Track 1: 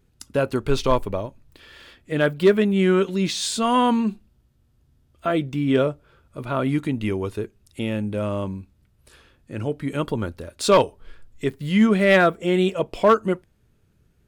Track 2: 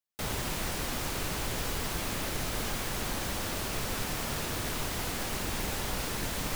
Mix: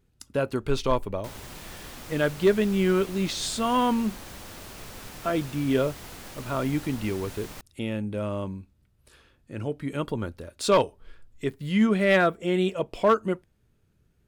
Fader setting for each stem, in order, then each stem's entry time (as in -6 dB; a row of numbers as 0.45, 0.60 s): -4.5, -8.5 dB; 0.00, 1.05 s